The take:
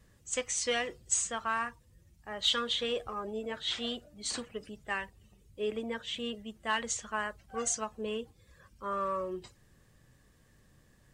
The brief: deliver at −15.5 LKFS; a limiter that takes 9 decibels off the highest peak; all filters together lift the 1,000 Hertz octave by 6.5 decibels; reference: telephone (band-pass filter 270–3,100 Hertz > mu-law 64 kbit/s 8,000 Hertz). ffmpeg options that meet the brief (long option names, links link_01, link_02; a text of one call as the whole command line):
ffmpeg -i in.wav -af "equalizer=frequency=1000:width_type=o:gain=8,alimiter=limit=-22.5dB:level=0:latency=1,highpass=270,lowpass=3100,volume=21dB" -ar 8000 -c:a pcm_mulaw out.wav